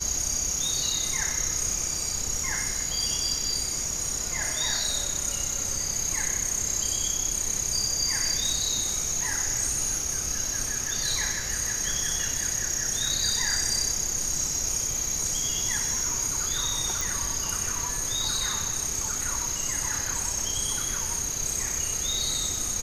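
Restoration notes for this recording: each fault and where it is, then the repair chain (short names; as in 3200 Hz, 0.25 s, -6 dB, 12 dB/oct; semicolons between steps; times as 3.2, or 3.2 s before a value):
17.01 pop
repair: de-click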